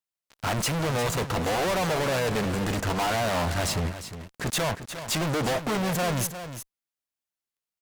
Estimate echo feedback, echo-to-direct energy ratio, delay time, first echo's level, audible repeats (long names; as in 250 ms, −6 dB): repeats not evenly spaced, −11.0 dB, 355 ms, −11.0 dB, 1